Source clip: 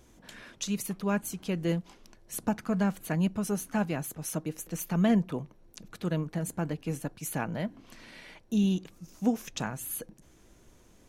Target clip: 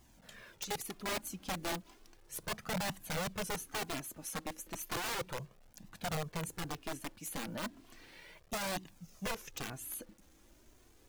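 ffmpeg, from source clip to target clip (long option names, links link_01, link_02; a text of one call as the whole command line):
ffmpeg -i in.wav -af "acrusher=bits=9:mix=0:aa=0.000001,aeval=exprs='(mod(18.8*val(0)+1,2)-1)/18.8':channel_layout=same,flanger=delay=1:depth=2.8:regen=-24:speed=0.34:shape=triangular,volume=-2.5dB" out.wav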